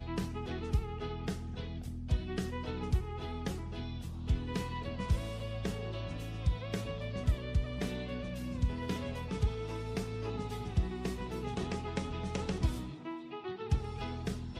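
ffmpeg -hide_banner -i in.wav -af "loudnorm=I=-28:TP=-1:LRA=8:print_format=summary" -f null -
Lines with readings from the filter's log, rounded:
Input Integrated:    -37.5 LUFS
Input True Peak:     -17.5 dBTP
Input LRA:             1.5 LU
Input Threshold:     -47.5 LUFS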